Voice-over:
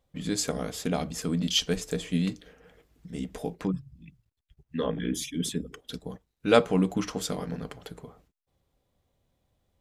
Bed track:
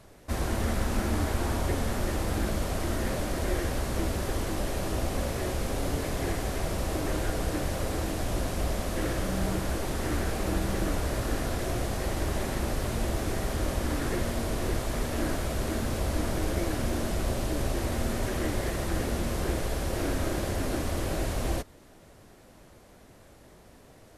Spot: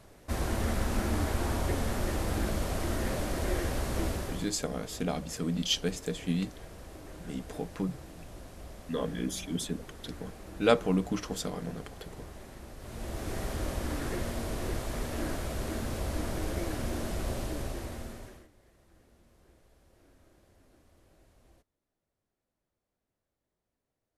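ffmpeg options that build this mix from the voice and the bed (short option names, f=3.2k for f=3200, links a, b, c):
-filter_complex "[0:a]adelay=4150,volume=-3.5dB[a];[1:a]volume=10.5dB,afade=t=out:st=4.07:d=0.48:silence=0.177828,afade=t=in:st=12.78:d=0.62:silence=0.237137,afade=t=out:st=17.38:d=1.1:silence=0.0375837[b];[a][b]amix=inputs=2:normalize=0"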